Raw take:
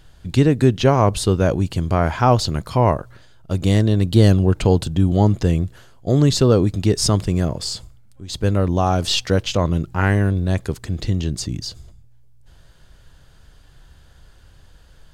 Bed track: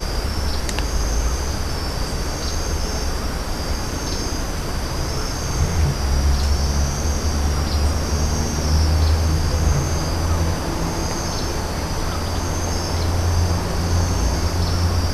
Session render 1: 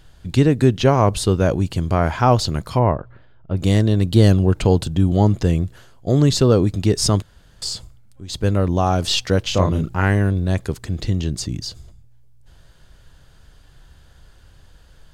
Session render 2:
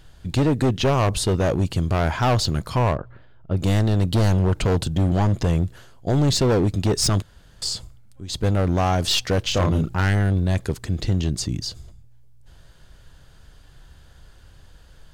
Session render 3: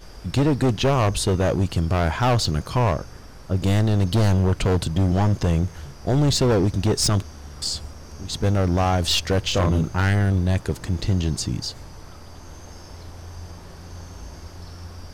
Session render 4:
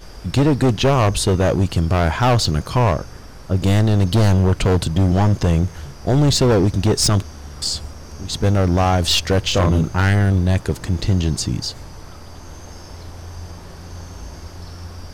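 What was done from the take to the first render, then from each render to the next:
2.79–3.57 s: distance through air 470 m; 7.22–7.62 s: room tone; 9.48–9.97 s: doubling 32 ms -3.5 dB
hard clipper -15 dBFS, distortion -8 dB
add bed track -19.5 dB
trim +4 dB

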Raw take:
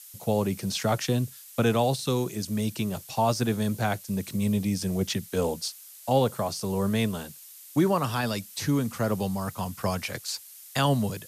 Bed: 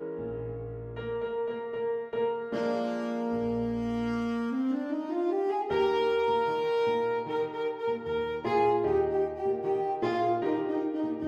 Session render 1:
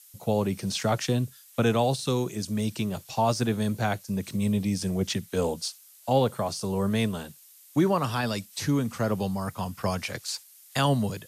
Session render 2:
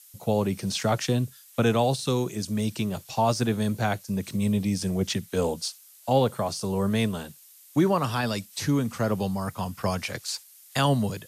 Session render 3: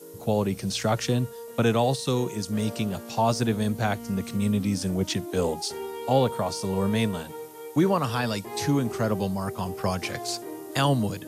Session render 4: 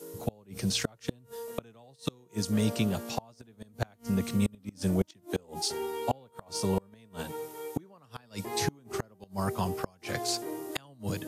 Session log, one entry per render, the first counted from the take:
noise print and reduce 6 dB
trim +1 dB
add bed -9 dB
inverted gate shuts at -16 dBFS, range -32 dB

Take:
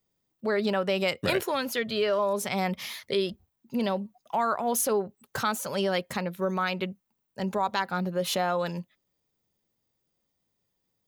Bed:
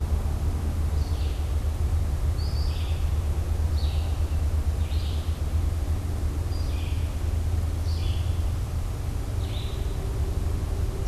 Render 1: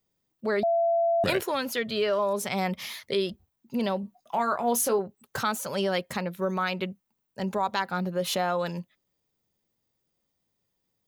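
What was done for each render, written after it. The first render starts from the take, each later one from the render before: 0.63–1.24 s: bleep 675 Hz -20.5 dBFS; 4.01–4.99 s: doubling 21 ms -8 dB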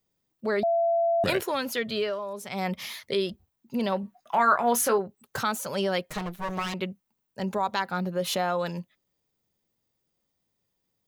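1.95–2.70 s: dip -8.5 dB, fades 0.25 s; 3.92–4.98 s: peaking EQ 1.6 kHz +9.5 dB 1.4 oct; 6.10–6.74 s: comb filter that takes the minimum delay 6.4 ms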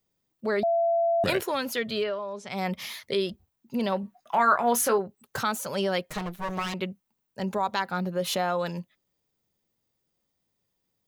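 2.03–2.48 s: low-pass 3.8 kHz -> 7.5 kHz 24 dB/octave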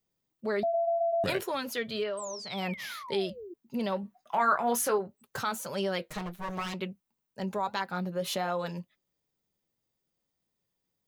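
2.17–3.54 s: painted sound fall 330–8600 Hz -39 dBFS; flange 1.9 Hz, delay 4.5 ms, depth 2.9 ms, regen -69%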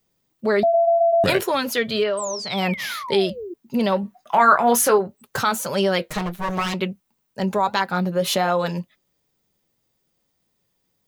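trim +11 dB

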